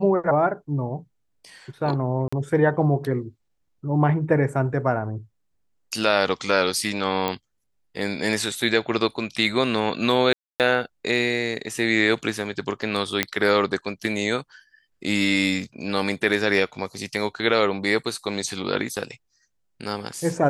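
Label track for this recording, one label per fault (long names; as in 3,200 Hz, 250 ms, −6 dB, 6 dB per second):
2.280000	2.330000	drop-out 45 ms
7.280000	7.280000	click −10 dBFS
10.330000	10.600000	drop-out 268 ms
13.230000	13.230000	click −4 dBFS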